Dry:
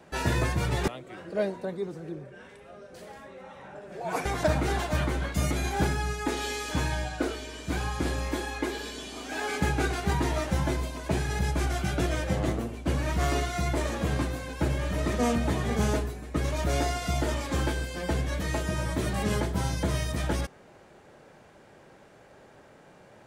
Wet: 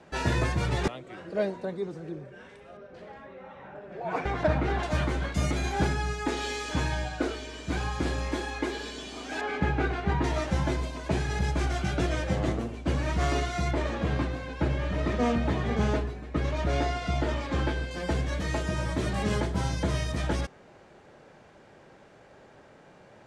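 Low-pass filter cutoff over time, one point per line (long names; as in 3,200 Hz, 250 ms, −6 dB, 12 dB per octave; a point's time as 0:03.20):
7,300 Hz
from 0:02.77 2,900 Hz
from 0:04.83 7,000 Hz
from 0:09.41 2,700 Hz
from 0:10.24 6,700 Hz
from 0:13.71 4,000 Hz
from 0:17.91 7,100 Hz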